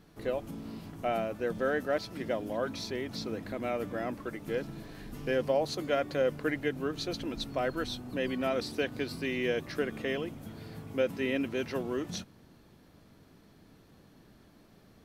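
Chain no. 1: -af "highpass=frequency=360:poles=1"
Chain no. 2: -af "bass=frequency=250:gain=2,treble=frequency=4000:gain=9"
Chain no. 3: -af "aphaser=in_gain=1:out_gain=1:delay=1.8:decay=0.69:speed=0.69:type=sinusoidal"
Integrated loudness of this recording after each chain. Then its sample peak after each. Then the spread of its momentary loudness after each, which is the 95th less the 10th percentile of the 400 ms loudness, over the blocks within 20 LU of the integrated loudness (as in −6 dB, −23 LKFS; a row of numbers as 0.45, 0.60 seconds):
−35.0, −33.0, −30.5 LKFS; −17.5, −16.5, −10.0 dBFS; 11, 9, 14 LU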